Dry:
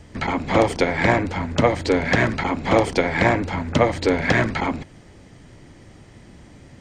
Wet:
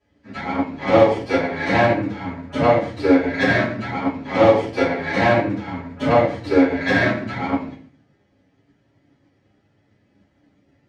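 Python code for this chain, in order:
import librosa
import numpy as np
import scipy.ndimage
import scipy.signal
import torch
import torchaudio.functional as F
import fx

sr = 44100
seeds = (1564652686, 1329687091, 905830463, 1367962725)

y = fx.tracing_dist(x, sr, depth_ms=0.16)
y = fx.stretch_vocoder(y, sr, factor=1.6)
y = fx.bandpass_edges(y, sr, low_hz=120.0, high_hz=4700.0)
y = fx.room_shoebox(y, sr, seeds[0], volume_m3=98.0, walls='mixed', distance_m=2.9)
y = fx.upward_expand(y, sr, threshold_db=-36.0, expansion=1.5)
y = y * 10.0 ** (-8.5 / 20.0)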